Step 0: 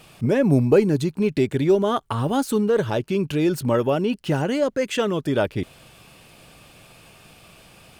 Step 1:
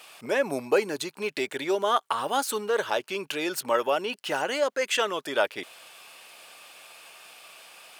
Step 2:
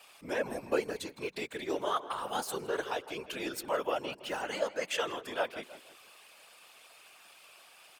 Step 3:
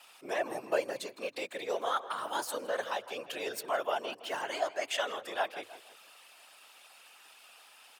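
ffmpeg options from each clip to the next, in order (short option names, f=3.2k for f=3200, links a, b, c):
-af "highpass=740,volume=2.5dB"
-filter_complex "[0:a]asplit=2[a][b];[b]adelay=161,lowpass=f=2.5k:p=1,volume=-13dB,asplit=2[c][d];[d]adelay=161,lowpass=f=2.5k:p=1,volume=0.4,asplit=2[e][f];[f]adelay=161,lowpass=f=2.5k:p=1,volume=0.4,asplit=2[g][h];[h]adelay=161,lowpass=f=2.5k:p=1,volume=0.4[i];[a][c][e][g][i]amix=inputs=5:normalize=0,afftfilt=real='hypot(re,im)*cos(2*PI*random(0))':imag='hypot(re,im)*sin(2*PI*random(1))':win_size=512:overlap=0.75,volume=-2dB"
-af "afreqshift=100"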